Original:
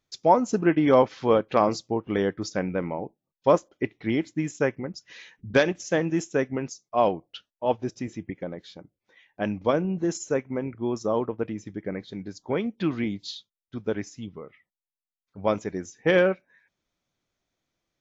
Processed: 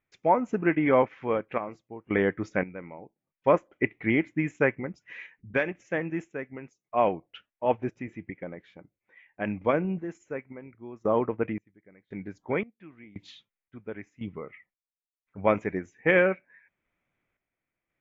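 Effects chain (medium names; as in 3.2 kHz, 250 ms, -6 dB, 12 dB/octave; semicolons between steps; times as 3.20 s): random-step tremolo 1.9 Hz, depth 95%; resonant high shelf 3.2 kHz -12.5 dB, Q 3; trim +1.5 dB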